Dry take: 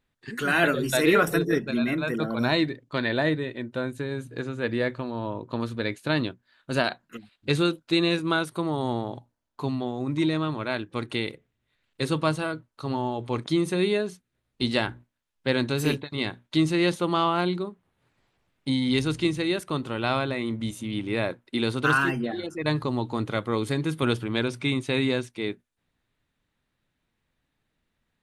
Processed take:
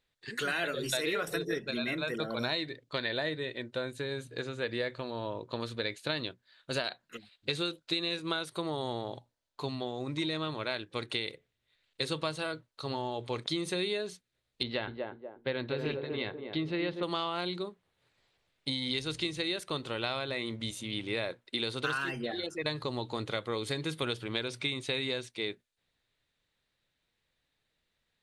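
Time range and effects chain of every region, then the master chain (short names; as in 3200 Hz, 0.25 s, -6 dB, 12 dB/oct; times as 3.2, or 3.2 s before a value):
14.63–17.03 air absorption 380 m + narrowing echo 0.242 s, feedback 45%, band-pass 460 Hz, level -5 dB
whole clip: ten-band EQ 250 Hz -4 dB, 500 Hz +6 dB, 2000 Hz +4 dB, 4000 Hz +10 dB, 8000 Hz +5 dB; compressor 6:1, threshold -22 dBFS; gain -7 dB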